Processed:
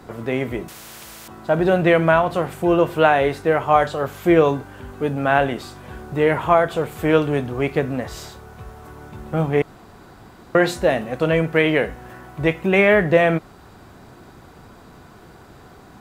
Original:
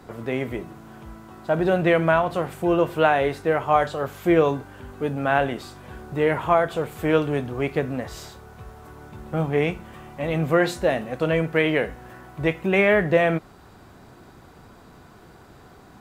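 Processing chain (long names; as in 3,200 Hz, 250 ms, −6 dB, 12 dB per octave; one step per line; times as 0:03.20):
0:00.68–0:01.28: every bin compressed towards the loudest bin 4 to 1
0:09.62–0:10.55: fill with room tone
level +3.5 dB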